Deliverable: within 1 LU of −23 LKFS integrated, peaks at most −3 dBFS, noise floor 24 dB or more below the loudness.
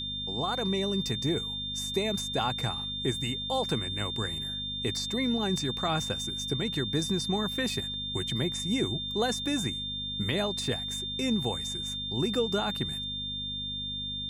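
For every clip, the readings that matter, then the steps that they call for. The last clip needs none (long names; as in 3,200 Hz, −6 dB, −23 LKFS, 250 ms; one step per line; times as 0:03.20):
mains hum 50 Hz; hum harmonics up to 250 Hz; level of the hum −41 dBFS; interfering tone 3,600 Hz; level of the tone −33 dBFS; integrated loudness −30.0 LKFS; sample peak −15.5 dBFS; target loudness −23.0 LKFS
→ hum removal 50 Hz, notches 5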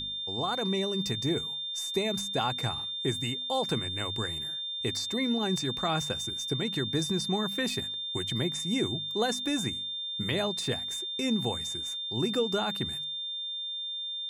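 mains hum none found; interfering tone 3,600 Hz; level of the tone −33 dBFS
→ notch filter 3,600 Hz, Q 30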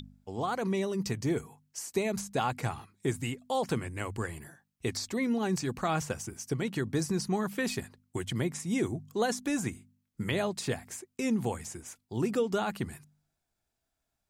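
interfering tone none found; integrated loudness −33.0 LKFS; sample peak −16.0 dBFS; target loudness −23.0 LKFS
→ level +10 dB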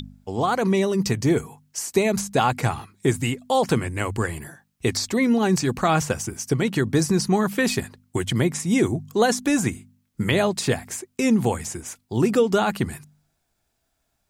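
integrated loudness −23.0 LKFS; sample peak −6.0 dBFS; background noise floor −73 dBFS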